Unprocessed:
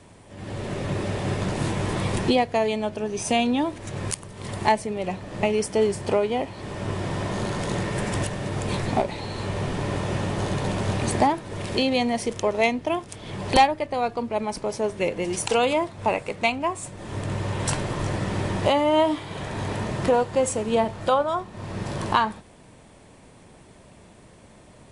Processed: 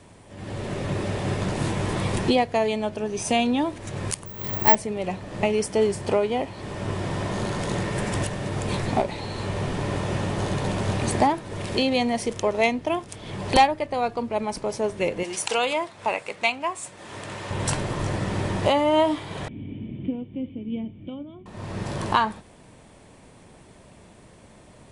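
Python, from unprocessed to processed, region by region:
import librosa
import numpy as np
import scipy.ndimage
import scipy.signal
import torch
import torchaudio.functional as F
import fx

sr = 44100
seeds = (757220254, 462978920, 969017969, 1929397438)

y = fx.chain(x, sr, fx.high_shelf(hz=5600.0, db=-6.0),
    fx.resample_bad(factor=2, down='none', up='zero_stuff'), at=(4.26, 4.75))
y = fx.chain(y, sr, fx.lowpass(hz=2000.0, slope=6),
    fx.tilt_eq(slope=4.0), at=(15.23, 17.51))
y = fx.chain(y, sr, fx.formant_cascade(vowel='i'),
    fx.peak_eq(hz=120.0, db=4.5, octaves=2.4), at=(19.48, 21.46))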